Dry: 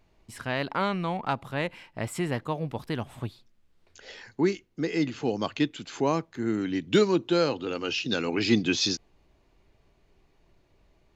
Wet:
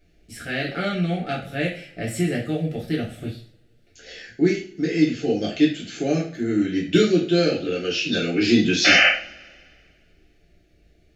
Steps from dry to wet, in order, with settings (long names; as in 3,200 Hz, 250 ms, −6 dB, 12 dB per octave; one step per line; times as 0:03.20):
sound drawn into the spectrogram noise, 0:08.84–0:09.09, 500–3,100 Hz −18 dBFS
Butterworth band-reject 1,000 Hz, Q 1.4
coupled-rooms reverb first 0.4 s, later 2 s, from −27 dB, DRR −5.5 dB
level −1 dB